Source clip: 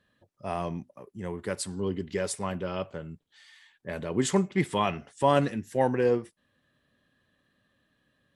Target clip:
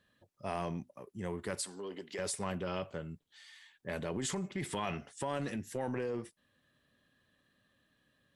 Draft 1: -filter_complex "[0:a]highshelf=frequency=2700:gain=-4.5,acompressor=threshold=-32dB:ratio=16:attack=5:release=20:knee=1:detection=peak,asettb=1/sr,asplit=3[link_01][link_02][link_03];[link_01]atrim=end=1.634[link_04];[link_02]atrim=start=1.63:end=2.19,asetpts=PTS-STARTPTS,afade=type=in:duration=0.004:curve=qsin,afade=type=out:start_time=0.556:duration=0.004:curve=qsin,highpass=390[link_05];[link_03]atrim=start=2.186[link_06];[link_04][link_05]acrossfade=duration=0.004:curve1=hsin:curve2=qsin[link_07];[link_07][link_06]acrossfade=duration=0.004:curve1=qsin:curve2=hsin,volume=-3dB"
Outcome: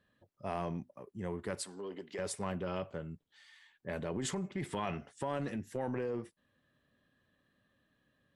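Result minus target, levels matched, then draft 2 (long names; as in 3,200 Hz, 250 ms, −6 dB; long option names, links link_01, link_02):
4,000 Hz band −2.5 dB
-filter_complex "[0:a]highshelf=frequency=2700:gain=4,acompressor=threshold=-32dB:ratio=16:attack=5:release=20:knee=1:detection=peak,asettb=1/sr,asplit=3[link_01][link_02][link_03];[link_01]atrim=end=1.634[link_04];[link_02]atrim=start=1.63:end=2.19,asetpts=PTS-STARTPTS,afade=type=in:duration=0.004:curve=qsin,afade=type=out:start_time=0.556:duration=0.004:curve=qsin,highpass=390[link_05];[link_03]atrim=start=2.186[link_06];[link_04][link_05]acrossfade=duration=0.004:curve1=hsin:curve2=qsin[link_07];[link_07][link_06]acrossfade=duration=0.004:curve1=qsin:curve2=hsin,volume=-3dB"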